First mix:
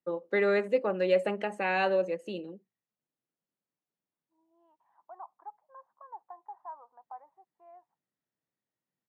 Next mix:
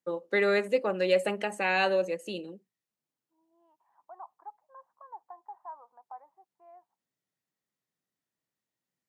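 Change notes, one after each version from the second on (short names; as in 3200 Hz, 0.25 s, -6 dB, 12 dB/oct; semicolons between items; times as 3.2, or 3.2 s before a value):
first voice: remove LPF 1900 Hz 6 dB/oct; second voice: entry -1.00 s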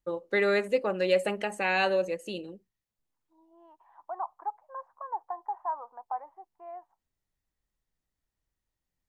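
first voice: remove HPF 140 Hz 24 dB/oct; second voice +11.0 dB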